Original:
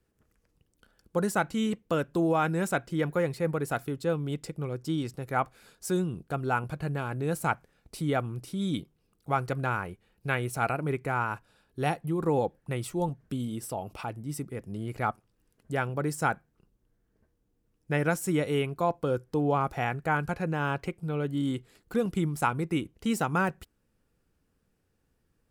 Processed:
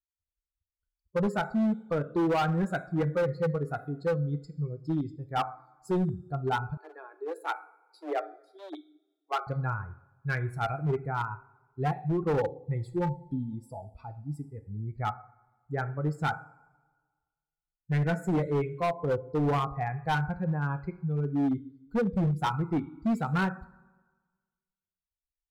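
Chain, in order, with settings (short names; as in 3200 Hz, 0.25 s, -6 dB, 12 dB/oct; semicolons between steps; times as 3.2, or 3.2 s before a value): per-bin expansion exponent 2; running mean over 15 samples; notch 580 Hz, Q 12; two-slope reverb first 0.52 s, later 1.5 s, from -17 dB, DRR 9 dB; hard clip -30 dBFS, distortion -11 dB; 6.77–9.47 Chebyshev high-pass 300 Hz, order 10; gain +7 dB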